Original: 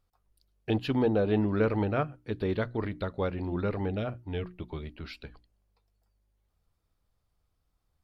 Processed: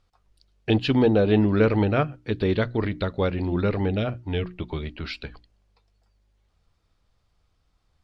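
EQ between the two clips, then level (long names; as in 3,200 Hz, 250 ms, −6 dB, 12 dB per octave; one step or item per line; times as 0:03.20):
high-frequency loss of the air 95 metres
high-shelf EQ 2,000 Hz +7.5 dB
dynamic equaliser 1,100 Hz, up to −4 dB, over −43 dBFS, Q 0.74
+7.5 dB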